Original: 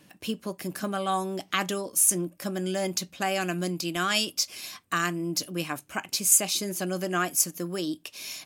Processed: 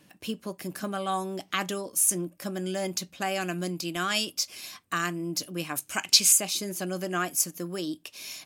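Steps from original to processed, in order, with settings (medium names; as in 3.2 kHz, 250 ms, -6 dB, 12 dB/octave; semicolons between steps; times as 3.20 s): 5.75–6.31 s: peaking EQ 12 kHz -> 2.8 kHz +14 dB 2.6 oct; trim -2 dB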